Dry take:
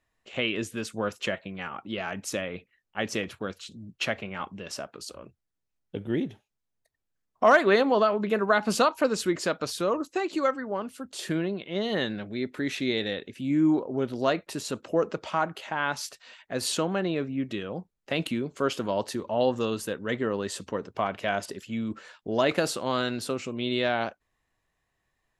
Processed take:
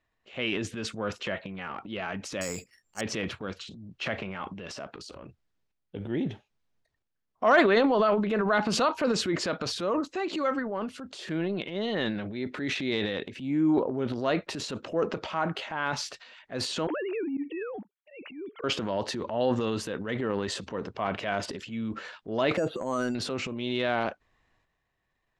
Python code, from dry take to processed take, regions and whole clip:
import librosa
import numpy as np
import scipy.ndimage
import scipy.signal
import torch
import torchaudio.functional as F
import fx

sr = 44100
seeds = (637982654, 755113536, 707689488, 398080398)

y = fx.chain(x, sr, fx.air_absorb(metres=200.0),
    fx.resample_bad(factor=6, down='none', up='zero_stuff'), at=(2.41, 3.01))
y = fx.chain(y, sr, fx.sine_speech(),
    fx.auto_swell(attack_ms=209.0), at=(16.87, 18.64))
y = fx.chain(y, sr, fx.spec_expand(power=1.7),
    fx.cheby2_lowpass(hz=9000.0, order=4, stop_db=50),
    fx.resample_bad(factor=6, down='filtered', up='hold'), at=(22.57, 23.15))
y = scipy.signal.sosfilt(scipy.signal.butter(2, 4800.0, 'lowpass', fs=sr, output='sos'), y)
y = fx.transient(y, sr, attack_db=-4, sustain_db=9)
y = y * 10.0 ** (-1.5 / 20.0)